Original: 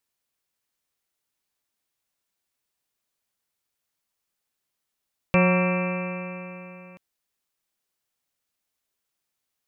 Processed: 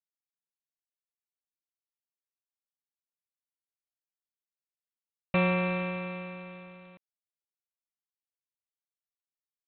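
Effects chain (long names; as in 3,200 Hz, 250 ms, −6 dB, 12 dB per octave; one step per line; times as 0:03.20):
low-pass that shuts in the quiet parts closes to 2,300 Hz, open at −26 dBFS
level −6 dB
G.726 24 kbit/s 8,000 Hz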